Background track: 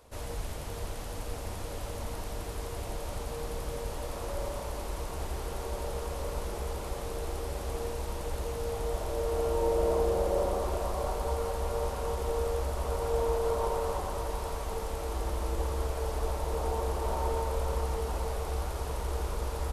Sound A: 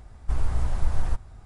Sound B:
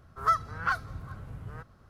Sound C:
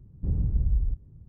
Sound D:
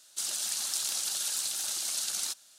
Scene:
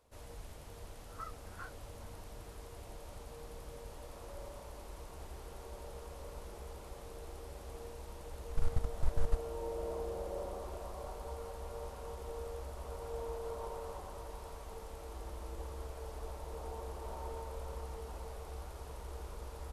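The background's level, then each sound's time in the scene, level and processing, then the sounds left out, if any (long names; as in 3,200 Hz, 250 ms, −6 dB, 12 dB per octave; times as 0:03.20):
background track −12.5 dB
0:00.92: mix in B −16.5 dB + micro pitch shift up and down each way 28 cents
0:08.21: mix in A −4.5 dB + output level in coarse steps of 19 dB
not used: C, D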